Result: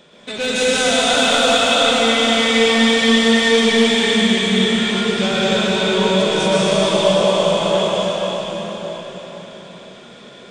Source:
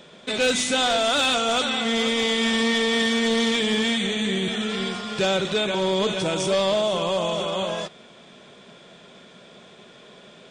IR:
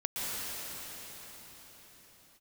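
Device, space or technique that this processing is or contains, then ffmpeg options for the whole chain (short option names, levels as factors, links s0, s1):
cathedral: -filter_complex "[1:a]atrim=start_sample=2205[s0];[0:a][s0]afir=irnorm=-1:irlink=0"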